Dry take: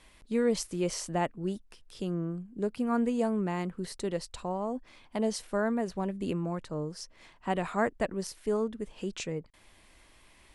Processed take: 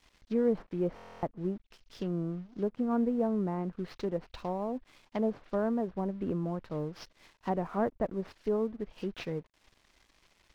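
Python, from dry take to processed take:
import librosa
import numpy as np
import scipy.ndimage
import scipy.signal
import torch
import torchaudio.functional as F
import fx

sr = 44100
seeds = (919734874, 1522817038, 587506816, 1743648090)

y = fx.cvsd(x, sr, bps=32000)
y = fx.env_lowpass_down(y, sr, base_hz=940.0, full_db=-28.5)
y = np.sign(y) * np.maximum(np.abs(y) - 10.0 ** (-58.5 / 20.0), 0.0)
y = fx.buffer_glitch(y, sr, at_s=(0.95,), block=1024, repeats=11)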